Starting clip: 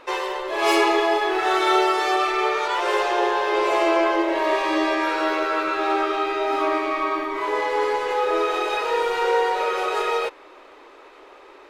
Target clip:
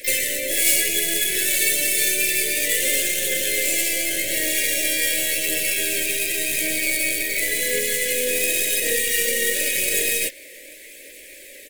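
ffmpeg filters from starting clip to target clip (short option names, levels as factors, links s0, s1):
-filter_complex "[0:a]lowshelf=f=540:t=q:w=3:g=-7,aecho=1:1:1.8:0.35,bandreject=f=76.28:t=h:w=4,bandreject=f=152.56:t=h:w=4,bandreject=f=228.84:t=h:w=4,acrossover=split=2900[s0][s1];[s0]alimiter=limit=0.188:level=0:latency=1:release=14[s2];[s2][s1]amix=inputs=2:normalize=0,acrossover=split=110|1600|7300[s3][s4][s5][s6];[s3]acompressor=threshold=0.00126:ratio=4[s7];[s4]acompressor=threshold=0.0501:ratio=4[s8];[s5]acompressor=threshold=0.0251:ratio=4[s9];[s6]acompressor=threshold=0.001:ratio=4[s10];[s7][s8][s9][s10]amix=inputs=4:normalize=0,aeval=exprs='0.168*(cos(1*acos(clip(val(0)/0.168,-1,1)))-cos(1*PI/2))+0.00188*(cos(5*acos(clip(val(0)/0.168,-1,1)))-cos(5*PI/2))+0.00596*(cos(6*acos(clip(val(0)/0.168,-1,1)))-cos(6*PI/2))+0.0075*(cos(7*acos(clip(val(0)/0.168,-1,1)))-cos(7*PI/2))+0.00168*(cos(8*acos(clip(val(0)/0.168,-1,1)))-cos(8*PI/2))':c=same,asplit=2[s11][s12];[s12]aeval=exprs='0.0237*(abs(mod(val(0)/0.0237+3,4)-2)-1)':c=same,volume=0.316[s13];[s11][s13]amix=inputs=2:normalize=0,aexciter=amount=11.4:drive=9:freq=7400,aphaser=in_gain=1:out_gain=1:delay=2.3:decay=0.29:speed=0.9:type=triangular,asplit=3[s14][s15][s16];[s15]asetrate=22050,aresample=44100,atempo=2,volume=0.178[s17];[s16]asetrate=88200,aresample=44100,atempo=0.5,volume=0.501[s18];[s14][s17][s18]amix=inputs=3:normalize=0,asuperstop=centerf=1000:order=12:qfactor=0.78,volume=2"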